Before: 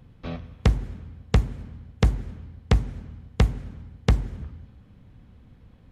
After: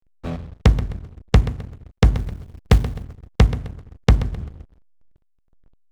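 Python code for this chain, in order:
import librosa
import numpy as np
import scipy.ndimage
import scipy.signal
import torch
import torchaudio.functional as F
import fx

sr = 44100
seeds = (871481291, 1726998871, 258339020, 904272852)

y = fx.quant_companded(x, sr, bits=6, at=(2.14, 3.03), fade=0.02)
y = fx.echo_feedback(y, sr, ms=130, feedback_pct=46, wet_db=-13)
y = fx.backlash(y, sr, play_db=-35.5)
y = F.gain(torch.from_numpy(y), 5.5).numpy()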